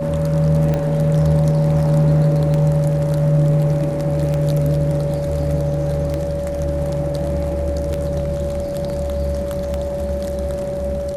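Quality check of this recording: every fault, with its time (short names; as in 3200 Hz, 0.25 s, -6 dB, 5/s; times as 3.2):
tick 33 1/3 rpm -10 dBFS
tone 570 Hz -22 dBFS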